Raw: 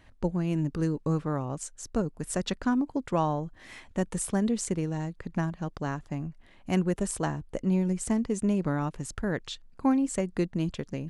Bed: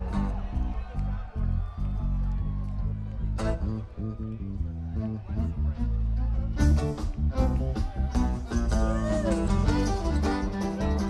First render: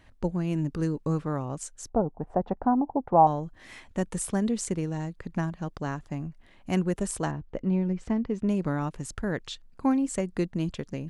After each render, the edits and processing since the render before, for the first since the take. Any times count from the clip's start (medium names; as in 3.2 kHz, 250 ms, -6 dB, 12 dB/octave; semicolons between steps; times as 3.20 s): 1.89–3.27 s: resonant low-pass 800 Hz, resonance Q 5.2; 7.31–8.49 s: distance through air 220 m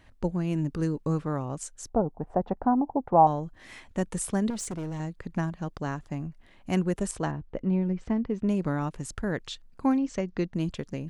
4.50–5.00 s: hard clipper -30.5 dBFS; 7.11–8.44 s: distance through air 73 m; 9.98–10.53 s: Chebyshev low-pass 6.1 kHz, order 4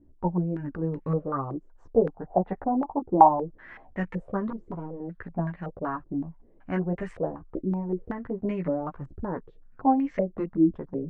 chorus voices 4, 0.37 Hz, delay 14 ms, depth 3.9 ms; step-sequenced low-pass 5.3 Hz 340–2000 Hz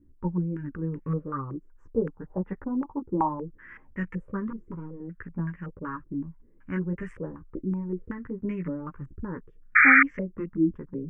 9.75–10.03 s: painted sound noise 1.2–2.4 kHz -15 dBFS; static phaser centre 1.7 kHz, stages 4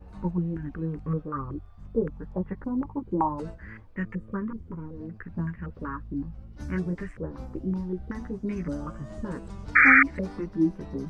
add bed -15.5 dB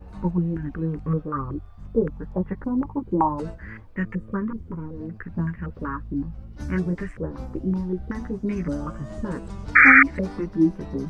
trim +4.5 dB; peak limiter -1 dBFS, peak gain reduction 2 dB